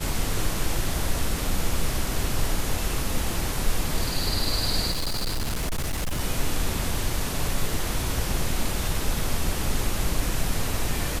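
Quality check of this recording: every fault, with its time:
4.90–6.21 s: clipped -23 dBFS

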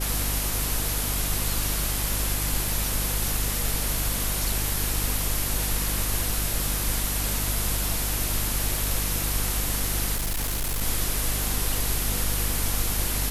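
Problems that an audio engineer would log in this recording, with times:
hum 50 Hz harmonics 7 -30 dBFS
10.15–10.82 s: clipped -23.5 dBFS

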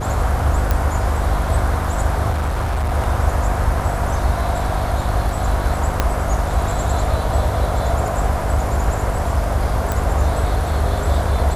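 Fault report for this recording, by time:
hum 50 Hz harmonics 7 -23 dBFS
0.71 s: pop
2.30–2.94 s: clipped -16.5 dBFS
6.00 s: pop -2 dBFS
9.92 s: pop

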